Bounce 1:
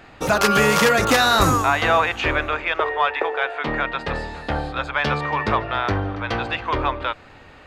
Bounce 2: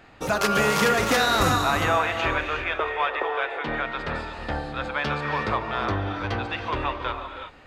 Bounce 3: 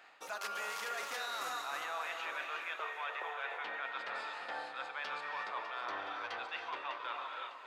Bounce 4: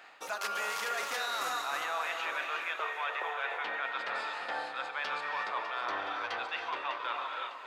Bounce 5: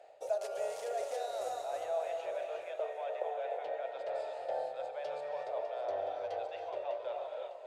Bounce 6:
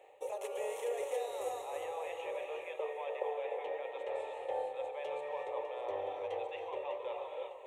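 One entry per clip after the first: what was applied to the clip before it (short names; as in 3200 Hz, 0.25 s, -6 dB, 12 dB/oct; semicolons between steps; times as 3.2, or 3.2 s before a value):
non-linear reverb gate 0.39 s rising, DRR 5 dB; gain -5.5 dB
HPF 770 Hz 12 dB/oct; reverse; compressor, threshold -33 dBFS, peak gain reduction 13.5 dB; reverse; echo with dull and thin repeats by turns 0.301 s, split 1400 Hz, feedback 65%, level -8 dB; gain -5 dB
ending taper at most 160 dB/s; gain +5.5 dB
EQ curve 140 Hz 0 dB, 200 Hz -29 dB, 400 Hz 0 dB, 620 Hz +12 dB, 1100 Hz -21 dB, 4900 Hz -13 dB, 9100 Hz -6 dB, 15000 Hz -20 dB
fixed phaser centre 990 Hz, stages 8; gain +5 dB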